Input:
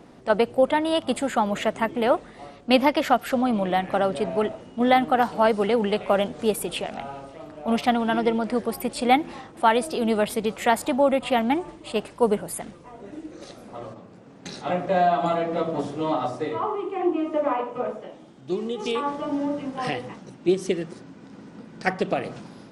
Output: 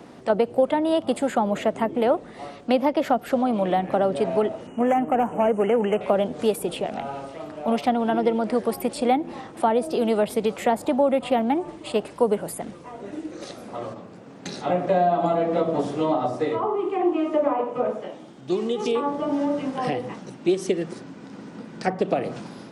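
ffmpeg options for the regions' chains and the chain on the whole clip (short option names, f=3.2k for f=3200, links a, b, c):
-filter_complex "[0:a]asettb=1/sr,asplit=3[a][b][c];[a]atrim=end=4.674[d];[b]atrim=start=4.67:end=6.01,asetpts=PTS-STARTPTS,afade=t=in:d=0.004:c=qsin,afade=t=out:st=1.336:d=0.004:c=qsin,volume=16dB,asoftclip=hard,volume=-16dB,asuperstop=centerf=4300:order=12:qfactor=1.4[e];[c]atrim=start=6.006[f];[d][e]acrossfade=d=0.004:c1=hsin:c2=qsin[g];[g][f]acrossfade=d=0.004:c1=qsin:c2=hsin,highpass=f=120:p=1,acrossover=split=400|800[h][i][j];[h]acompressor=threshold=-30dB:ratio=4[k];[i]acompressor=threshold=-25dB:ratio=4[l];[j]acompressor=threshold=-40dB:ratio=4[m];[k][l][m]amix=inputs=3:normalize=0,volume=5dB"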